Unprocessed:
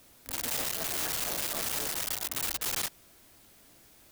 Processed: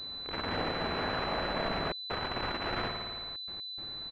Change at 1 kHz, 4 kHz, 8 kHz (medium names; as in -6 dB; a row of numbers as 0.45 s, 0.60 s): +7.5 dB, +2.5 dB, under -30 dB